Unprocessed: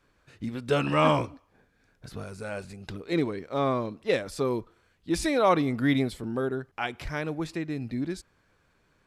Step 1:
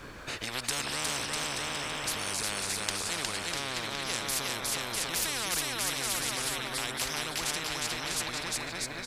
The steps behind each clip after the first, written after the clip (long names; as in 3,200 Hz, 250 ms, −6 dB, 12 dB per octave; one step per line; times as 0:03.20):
in parallel at +1.5 dB: downward compressor, threshold −35 dBFS, peak gain reduction 17 dB
on the sum: bouncing-ball delay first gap 360 ms, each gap 0.8×, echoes 5
every bin compressed towards the loudest bin 10 to 1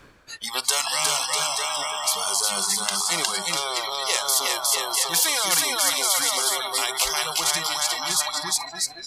noise reduction from a noise print of the clip's start 25 dB
reversed playback
upward compression, threshold −45 dBFS
reversed playback
boost into a limiter +11 dB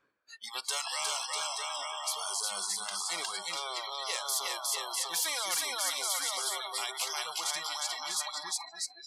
soft clipping −13 dBFS, distortion −19 dB
high-pass filter 380 Hz 6 dB per octave
every bin expanded away from the loudest bin 1.5 to 1
level −9 dB